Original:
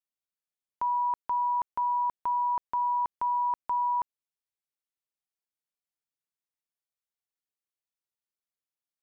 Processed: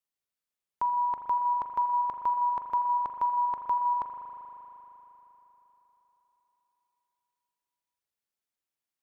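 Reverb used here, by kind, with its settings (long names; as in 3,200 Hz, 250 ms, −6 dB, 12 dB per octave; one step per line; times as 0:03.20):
spring reverb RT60 4 s, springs 39 ms, chirp 75 ms, DRR 4.5 dB
level +1.5 dB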